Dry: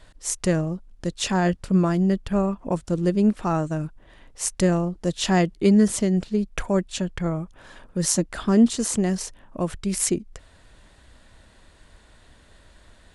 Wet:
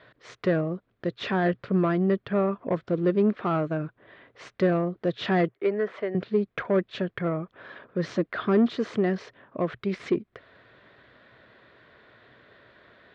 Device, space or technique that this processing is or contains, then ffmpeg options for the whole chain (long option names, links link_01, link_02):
overdrive pedal into a guitar cabinet: -filter_complex "[0:a]asettb=1/sr,asplit=3[link_01][link_02][link_03];[link_01]atrim=end=5.484[link_04];[link_02]atrim=start=5.48:end=6.15,asetpts=PTS-STARTPTS,afade=type=in:duration=0.004:curve=qsin,afade=type=out:start_time=0.666:duration=0.004:curve=qsin,acrossover=split=460 2500:gain=0.112 1 0.158[link_05][link_06][link_07];[link_05][link_06][link_07]amix=inputs=3:normalize=0[link_08];[link_03]atrim=start=6.146[link_09];[link_04][link_08]acrossfade=duration=0.004:curve1=hsin:curve2=qsin[link_10];[link_10][link_09]acrossfade=duration=0.004:curve1=qsin:curve2=hsin,asplit=2[link_11][link_12];[link_12]highpass=frequency=720:poles=1,volume=20dB,asoftclip=type=tanh:threshold=-5dB[link_13];[link_11][link_13]amix=inputs=2:normalize=0,lowpass=frequency=2300:poles=1,volume=-6dB,highpass=97,equalizer=frequency=120:width_type=q:width=4:gain=9,equalizer=frequency=410:width_type=q:width=4:gain=5,equalizer=frequency=870:width_type=q:width=4:gain=-9,equalizer=frequency=2800:width_type=q:width=4:gain=-6,lowpass=frequency=3500:width=0.5412,lowpass=frequency=3500:width=1.3066,volume=-7.5dB"